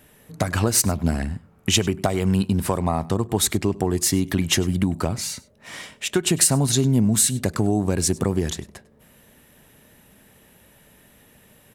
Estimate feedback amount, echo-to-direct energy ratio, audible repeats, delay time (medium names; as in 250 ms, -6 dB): no regular repeats, -22.0 dB, 1, 100 ms